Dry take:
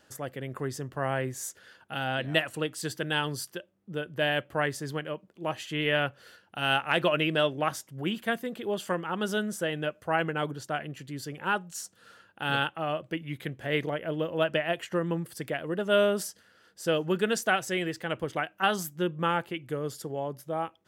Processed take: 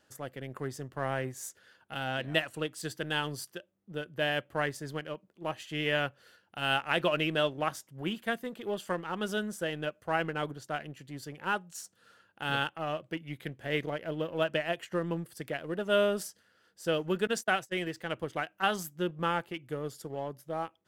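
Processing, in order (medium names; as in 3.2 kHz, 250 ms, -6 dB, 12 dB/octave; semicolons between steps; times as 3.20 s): 17.27–17.87 s: gate -31 dBFS, range -26 dB; in parallel at -4.5 dB: crossover distortion -37.5 dBFS; on the sum: trim -6.5 dB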